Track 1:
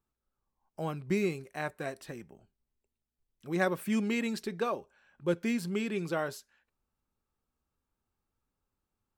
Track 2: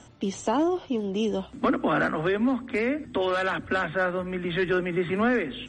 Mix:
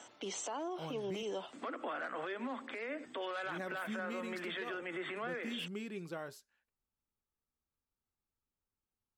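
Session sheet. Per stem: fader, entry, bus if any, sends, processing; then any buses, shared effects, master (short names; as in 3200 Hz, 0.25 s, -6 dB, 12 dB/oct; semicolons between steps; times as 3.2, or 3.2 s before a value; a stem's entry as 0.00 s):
-10.0 dB, 0.00 s, muted 1.23–3.04, no send, dry
-0.5 dB, 0.00 s, no send, HPF 500 Hz 12 dB/oct; compressor, threshold -32 dBFS, peak gain reduction 10 dB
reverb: off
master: limiter -32 dBFS, peak gain reduction 10.5 dB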